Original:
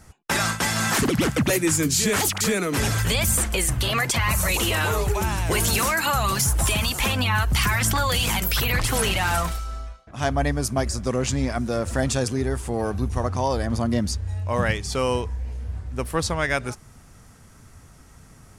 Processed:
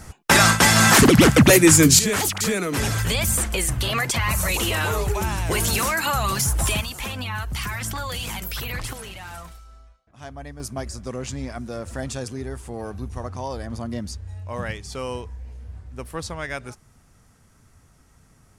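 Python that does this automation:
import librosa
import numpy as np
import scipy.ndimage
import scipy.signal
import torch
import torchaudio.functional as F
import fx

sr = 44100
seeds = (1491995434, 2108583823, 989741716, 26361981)

y = fx.gain(x, sr, db=fx.steps((0.0, 8.5), (1.99, -0.5), (6.81, -7.5), (8.93, -15.0), (10.6, -7.0)))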